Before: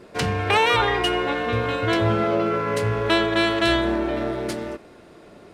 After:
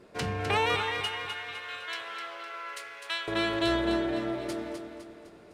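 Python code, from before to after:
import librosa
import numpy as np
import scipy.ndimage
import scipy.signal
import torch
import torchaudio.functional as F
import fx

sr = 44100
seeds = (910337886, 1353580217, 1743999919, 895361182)

y = fx.highpass(x, sr, hz=1500.0, slope=12, at=(0.75, 3.28))
y = fx.echo_feedback(y, sr, ms=254, feedback_pct=47, wet_db=-7)
y = F.gain(torch.from_numpy(y), -8.5).numpy()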